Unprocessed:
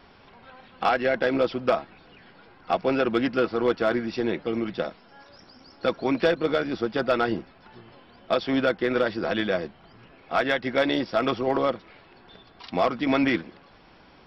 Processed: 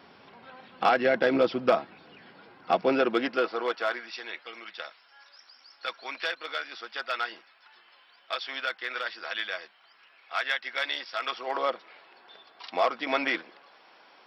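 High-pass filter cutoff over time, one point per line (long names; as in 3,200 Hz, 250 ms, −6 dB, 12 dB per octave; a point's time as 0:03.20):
0:02.71 150 Hz
0:03.15 330 Hz
0:04.22 1,400 Hz
0:11.21 1,400 Hz
0:11.73 580 Hz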